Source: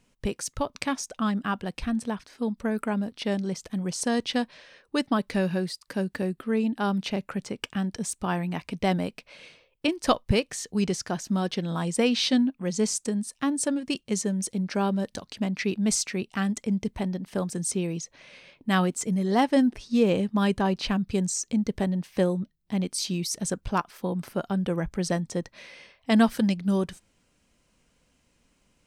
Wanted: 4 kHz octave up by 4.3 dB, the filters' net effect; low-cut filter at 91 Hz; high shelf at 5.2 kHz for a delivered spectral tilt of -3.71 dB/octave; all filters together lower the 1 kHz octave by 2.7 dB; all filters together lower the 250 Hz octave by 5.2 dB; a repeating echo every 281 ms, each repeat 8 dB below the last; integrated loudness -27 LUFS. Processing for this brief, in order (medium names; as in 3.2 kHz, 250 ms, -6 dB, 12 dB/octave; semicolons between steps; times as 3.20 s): high-pass 91 Hz; peaking EQ 250 Hz -6.5 dB; peaking EQ 1 kHz -3.5 dB; peaking EQ 4 kHz +8 dB; treble shelf 5.2 kHz -5 dB; feedback delay 281 ms, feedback 40%, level -8 dB; trim +2.5 dB